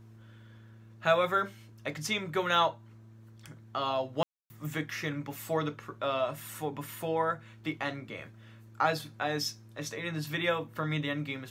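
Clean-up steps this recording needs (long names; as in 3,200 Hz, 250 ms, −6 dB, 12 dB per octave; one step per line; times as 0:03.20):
hum removal 111.3 Hz, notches 3
ambience match 0:04.23–0:04.50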